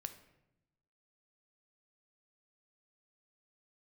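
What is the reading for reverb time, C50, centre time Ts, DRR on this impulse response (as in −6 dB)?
0.90 s, 12.0 dB, 9 ms, 8.0 dB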